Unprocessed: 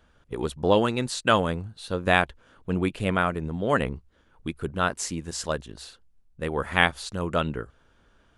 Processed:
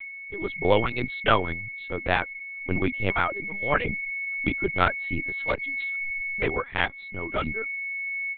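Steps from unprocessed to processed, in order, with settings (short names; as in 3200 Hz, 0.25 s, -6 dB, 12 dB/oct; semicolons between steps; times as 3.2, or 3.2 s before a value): whine 2200 Hz -30 dBFS; 3.11–3.85 low shelf 320 Hz -11.5 dB; AGC gain up to 11.5 dB; reverb removal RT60 0.73 s; LPC vocoder at 8 kHz pitch kept; 5.41–5.82 core saturation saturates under 250 Hz; gain -5 dB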